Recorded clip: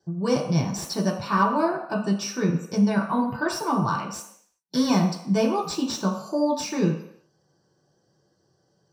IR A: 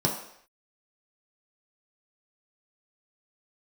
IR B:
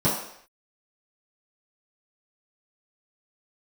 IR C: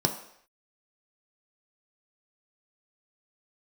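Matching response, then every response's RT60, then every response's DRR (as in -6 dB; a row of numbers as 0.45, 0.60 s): A; not exponential, not exponential, not exponential; -1.5, -11.5, 4.0 dB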